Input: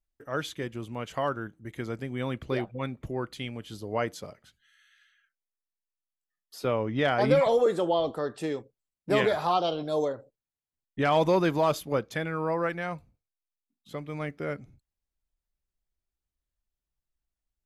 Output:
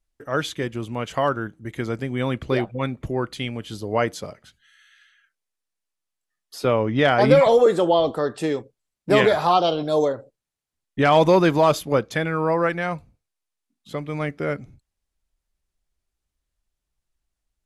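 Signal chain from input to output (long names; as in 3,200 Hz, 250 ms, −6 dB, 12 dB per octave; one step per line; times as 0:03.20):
low-pass filter 12,000 Hz 24 dB per octave
level +7.5 dB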